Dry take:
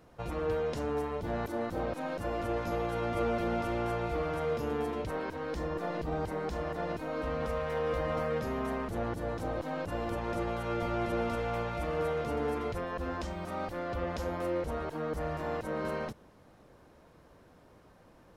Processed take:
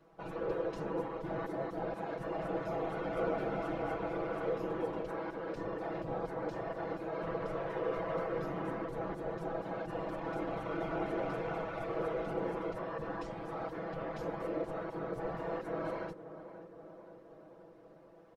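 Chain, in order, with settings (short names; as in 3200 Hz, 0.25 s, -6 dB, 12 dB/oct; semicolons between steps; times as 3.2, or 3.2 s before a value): HPF 740 Hz 6 dB/oct; tilt -3.5 dB/oct; whisperiser; comb 6.1 ms, depth 90%; on a send: tape echo 0.529 s, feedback 78%, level -11 dB, low-pass 1200 Hz; on the sum: gain -4.5 dB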